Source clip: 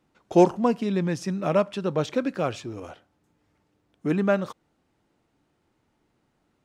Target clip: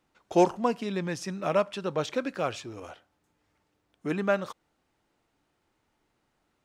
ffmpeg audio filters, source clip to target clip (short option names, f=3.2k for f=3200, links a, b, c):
-af "equalizer=f=170:w=0.39:g=-7.5"